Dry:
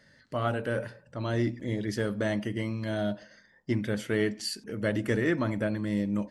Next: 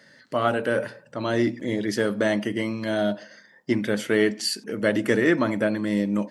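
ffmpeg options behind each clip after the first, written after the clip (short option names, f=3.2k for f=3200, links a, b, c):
-af "highpass=200,volume=7.5dB"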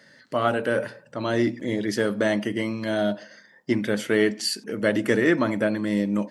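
-af anull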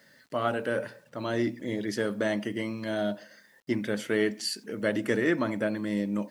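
-af "acrusher=bits=9:mix=0:aa=0.000001,volume=-5.5dB"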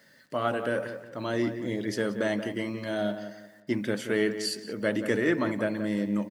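-filter_complex "[0:a]asplit=2[a][b];[b]adelay=178,lowpass=f=2.3k:p=1,volume=-9.5dB,asplit=2[c][d];[d]adelay=178,lowpass=f=2.3k:p=1,volume=0.34,asplit=2[e][f];[f]adelay=178,lowpass=f=2.3k:p=1,volume=0.34,asplit=2[g][h];[h]adelay=178,lowpass=f=2.3k:p=1,volume=0.34[i];[a][c][e][g][i]amix=inputs=5:normalize=0"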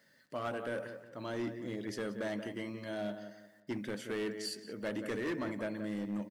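-af "asoftclip=type=hard:threshold=-23dB,volume=-8.5dB"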